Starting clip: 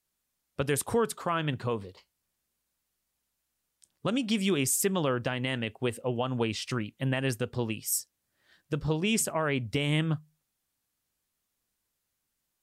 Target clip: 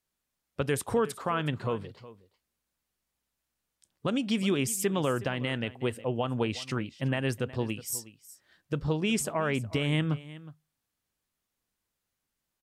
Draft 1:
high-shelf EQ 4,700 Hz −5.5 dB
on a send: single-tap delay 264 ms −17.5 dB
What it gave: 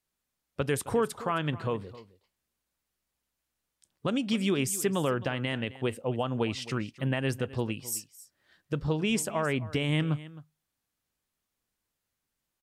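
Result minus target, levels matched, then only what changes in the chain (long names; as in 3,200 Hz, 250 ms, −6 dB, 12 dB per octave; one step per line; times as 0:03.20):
echo 102 ms early
change: single-tap delay 366 ms −17.5 dB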